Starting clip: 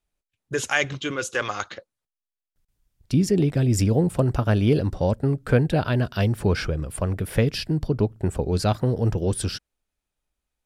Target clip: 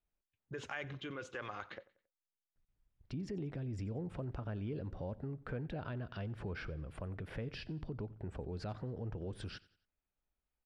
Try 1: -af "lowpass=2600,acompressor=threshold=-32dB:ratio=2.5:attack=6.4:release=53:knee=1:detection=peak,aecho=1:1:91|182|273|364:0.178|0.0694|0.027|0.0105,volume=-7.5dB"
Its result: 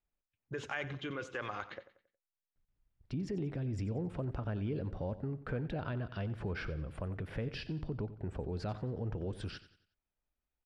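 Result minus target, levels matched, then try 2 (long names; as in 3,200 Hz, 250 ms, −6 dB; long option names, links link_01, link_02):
echo-to-direct +6 dB; downward compressor: peak gain reduction −4 dB
-af "lowpass=2600,acompressor=threshold=-38.5dB:ratio=2.5:attack=6.4:release=53:knee=1:detection=peak,aecho=1:1:91|182|273:0.0891|0.0348|0.0136,volume=-7.5dB"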